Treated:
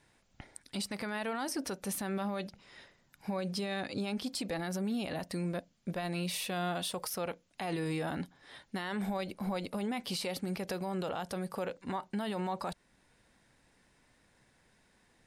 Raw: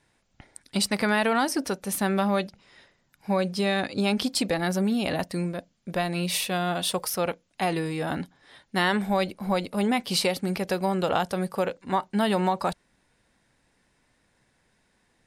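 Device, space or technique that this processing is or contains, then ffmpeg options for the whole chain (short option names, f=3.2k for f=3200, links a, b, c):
stacked limiters: -af "alimiter=limit=-17dB:level=0:latency=1:release=171,alimiter=limit=-24dB:level=0:latency=1:release=79,alimiter=level_in=3dB:limit=-24dB:level=0:latency=1:release=422,volume=-3dB"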